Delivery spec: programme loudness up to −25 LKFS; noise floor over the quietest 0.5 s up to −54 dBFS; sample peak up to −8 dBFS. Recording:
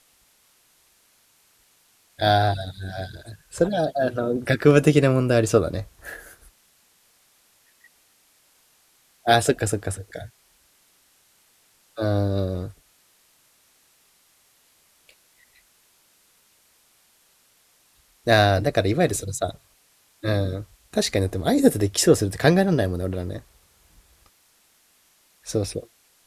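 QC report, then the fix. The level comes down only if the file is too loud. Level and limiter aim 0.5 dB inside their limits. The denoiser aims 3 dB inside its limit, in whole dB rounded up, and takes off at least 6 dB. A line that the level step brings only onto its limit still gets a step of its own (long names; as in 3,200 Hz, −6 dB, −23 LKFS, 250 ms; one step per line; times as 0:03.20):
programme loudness −22.0 LKFS: out of spec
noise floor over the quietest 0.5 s −61 dBFS: in spec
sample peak −1.5 dBFS: out of spec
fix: level −3.5 dB
brickwall limiter −8.5 dBFS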